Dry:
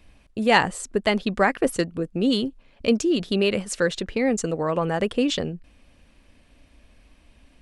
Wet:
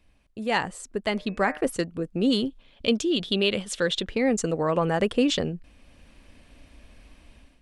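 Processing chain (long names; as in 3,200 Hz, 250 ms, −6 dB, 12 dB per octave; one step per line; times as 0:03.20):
0:01.11–0:01.61: hum removal 151.7 Hz, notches 17
0:02.44–0:04.09: parametric band 3,400 Hz +12.5 dB 0.42 octaves
automatic gain control gain up to 12.5 dB
level −9 dB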